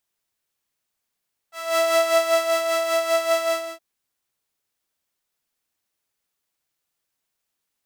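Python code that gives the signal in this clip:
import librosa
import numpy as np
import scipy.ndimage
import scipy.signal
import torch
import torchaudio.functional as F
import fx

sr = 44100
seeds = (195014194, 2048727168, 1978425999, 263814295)

y = fx.sub_patch_tremolo(sr, seeds[0], note=76, wave='saw', wave2='saw', interval_st=0, detune_cents=16, level2_db=-9.0, sub_db=-15.0, noise_db=-24.5, kind='highpass', cutoff_hz=380.0, q=1.4, env_oct=1.5, env_decay_s=0.27, env_sustain_pct=40, attack_ms=298.0, decay_s=0.74, sustain_db=-3.5, release_s=0.32, note_s=1.95, lfo_hz=5.1, tremolo_db=7)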